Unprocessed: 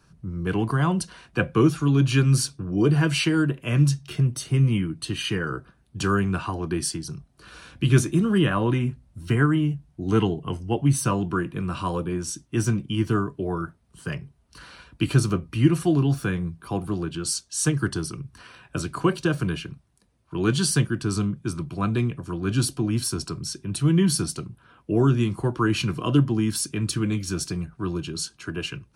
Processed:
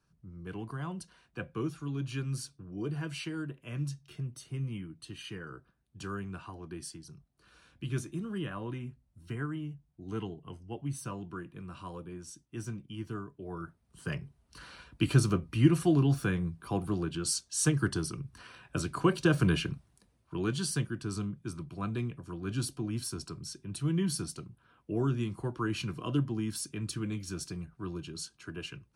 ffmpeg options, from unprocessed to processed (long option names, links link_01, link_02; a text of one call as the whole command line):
ffmpeg -i in.wav -af "volume=2dB,afade=type=in:start_time=13.41:duration=0.75:silence=0.266073,afade=type=in:start_time=19.12:duration=0.58:silence=0.473151,afade=type=out:start_time=19.7:duration=0.8:silence=0.237137" out.wav